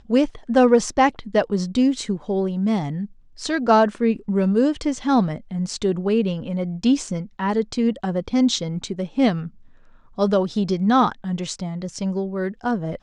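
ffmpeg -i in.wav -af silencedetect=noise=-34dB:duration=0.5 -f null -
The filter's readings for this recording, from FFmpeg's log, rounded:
silence_start: 9.48
silence_end: 10.18 | silence_duration: 0.70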